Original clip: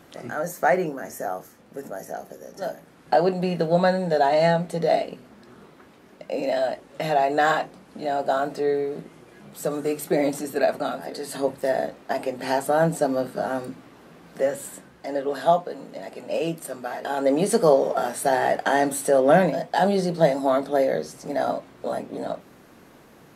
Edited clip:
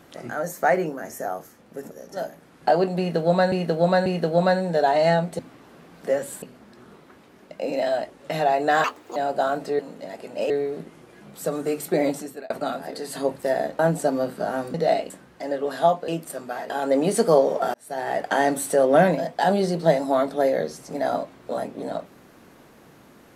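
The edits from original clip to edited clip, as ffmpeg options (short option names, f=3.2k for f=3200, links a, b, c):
-filter_complex "[0:a]asplit=16[a][b][c][d][e][f][g][h][i][j][k][l][m][n][o][p];[a]atrim=end=1.912[q];[b]atrim=start=2.358:end=3.972[r];[c]atrim=start=3.428:end=3.972[s];[d]atrim=start=3.428:end=4.762[t];[e]atrim=start=13.708:end=14.742[u];[f]atrim=start=5.118:end=7.544[v];[g]atrim=start=7.54:end=8.06,asetpts=PTS-STARTPTS,asetrate=71442,aresample=44100[w];[h]atrim=start=8.056:end=8.692[x];[i]atrim=start=15.718:end=16.432[y];[j]atrim=start=8.688:end=10.69,asetpts=PTS-STARTPTS,afade=t=out:st=1.592:d=0.41[z];[k]atrim=start=10.69:end=11.982,asetpts=PTS-STARTPTS,afade=t=in:d=0.004:c=hsin[aa];[l]atrim=start=12.758:end=13.712[ab];[m]atrim=start=4.758:end=5.122[ac];[n]atrim=start=14.738:end=15.722[ad];[o]atrim=start=16.428:end=18.09,asetpts=PTS-STARTPTS,afade=t=out:st=1.658:d=0.004:c=hsin[ae];[p]atrim=start=18.09,asetpts=PTS-STARTPTS,afade=t=in:d=0.62[af];[q][r]acrossfade=d=0.004:c1=hsin:c2=hsin[ag];[ag][s]acrossfade=d=0.004:c1=hsin:c2=hsin[ah];[ah][t]acrossfade=d=0.004:c1=hsin:c2=hsin[ai];[ai][u]acrossfade=d=0.004:c1=hsin:c2=hsin[aj];[aj][v]acrossfade=d=0.004:c1=hsin:c2=hsin[ak];[ak][w]acrossfade=d=0.004:c1=hsin:c2=hsin[al];[al][x]acrossfade=d=0.004:c1=hsin:c2=hsin[am];[am][y]acrossfade=d=0.004:c1=hsin:c2=hsin[an];[z][aa]concat=n=2:v=0:a=1[ao];[an][ao]acrossfade=d=0.004:c1=hsin:c2=hsin[ap];[ap][ab]acrossfade=d=0.004:c1=hsin:c2=hsin[aq];[aq][ac]acrossfade=d=0.004:c1=hsin:c2=hsin[ar];[ar][ad]acrossfade=d=0.004:c1=hsin:c2=hsin[as];[ae][af]concat=n=2:v=0:a=1[at];[as][at]acrossfade=d=0.004:c1=hsin:c2=hsin"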